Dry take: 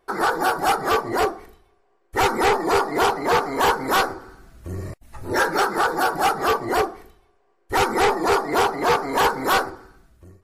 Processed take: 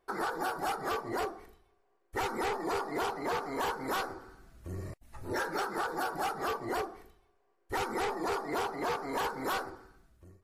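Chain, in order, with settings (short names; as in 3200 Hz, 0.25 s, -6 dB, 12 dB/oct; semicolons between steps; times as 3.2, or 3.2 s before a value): compressor, threshold -21 dBFS, peak gain reduction 6.5 dB; gain -9 dB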